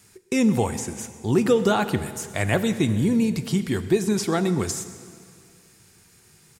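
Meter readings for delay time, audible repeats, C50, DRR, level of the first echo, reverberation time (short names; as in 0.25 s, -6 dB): 0.127 s, 1, 12.0 dB, 10.5 dB, -21.5 dB, 2.2 s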